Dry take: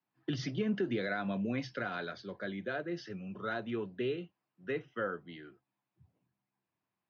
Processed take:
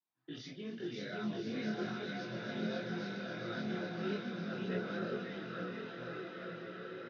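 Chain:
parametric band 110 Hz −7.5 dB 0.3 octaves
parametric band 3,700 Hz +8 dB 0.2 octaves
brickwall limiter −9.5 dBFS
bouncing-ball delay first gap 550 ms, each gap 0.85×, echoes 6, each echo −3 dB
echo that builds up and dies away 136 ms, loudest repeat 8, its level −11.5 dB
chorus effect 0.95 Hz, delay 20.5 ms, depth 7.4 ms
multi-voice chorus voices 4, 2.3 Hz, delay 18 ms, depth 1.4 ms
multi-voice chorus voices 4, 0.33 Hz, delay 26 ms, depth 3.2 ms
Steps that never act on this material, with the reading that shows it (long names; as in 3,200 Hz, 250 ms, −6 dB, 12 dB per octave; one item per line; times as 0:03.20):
brickwall limiter −9.5 dBFS: peak of its input −21.5 dBFS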